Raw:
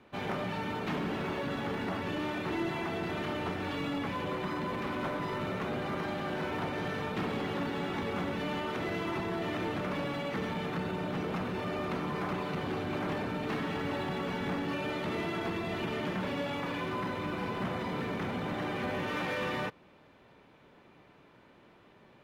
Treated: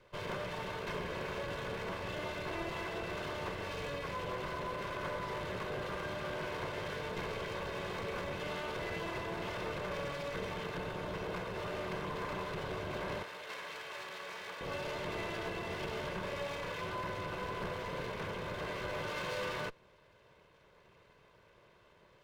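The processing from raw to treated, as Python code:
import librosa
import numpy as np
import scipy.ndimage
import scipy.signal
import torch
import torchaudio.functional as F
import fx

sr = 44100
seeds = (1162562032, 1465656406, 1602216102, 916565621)

y = fx.lower_of_two(x, sr, delay_ms=1.9)
y = fx.highpass(y, sr, hz=1300.0, slope=6, at=(13.23, 14.61))
y = F.gain(torch.from_numpy(y), -2.5).numpy()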